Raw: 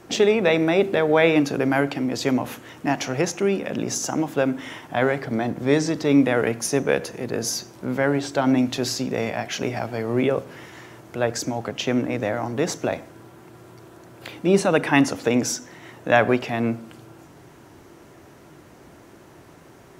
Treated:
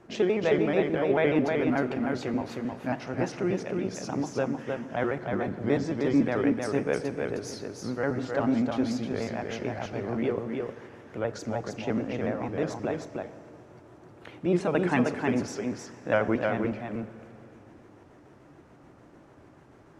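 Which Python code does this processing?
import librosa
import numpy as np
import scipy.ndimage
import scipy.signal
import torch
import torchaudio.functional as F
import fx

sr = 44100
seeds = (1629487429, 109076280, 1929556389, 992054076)

y = fx.pitch_trill(x, sr, semitones=-2.0, every_ms=73)
y = scipy.signal.sosfilt(scipy.signal.butter(2, 6200.0, 'lowpass', fs=sr, output='sos'), y)
y = fx.peak_eq(y, sr, hz=4500.0, db=-7.5, octaves=1.8)
y = y + 10.0 ** (-4.0 / 20.0) * np.pad(y, (int(311 * sr / 1000.0), 0))[:len(y)]
y = fx.rev_schroeder(y, sr, rt60_s=3.4, comb_ms=38, drr_db=15.0)
y = F.gain(torch.from_numpy(y), -6.5).numpy()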